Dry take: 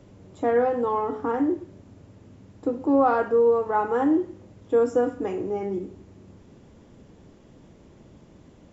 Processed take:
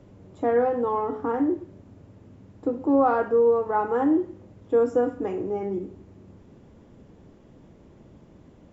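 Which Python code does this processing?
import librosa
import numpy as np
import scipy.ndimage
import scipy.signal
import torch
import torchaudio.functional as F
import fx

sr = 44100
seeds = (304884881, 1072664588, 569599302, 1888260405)

y = fx.high_shelf(x, sr, hz=2700.0, db=-7.5)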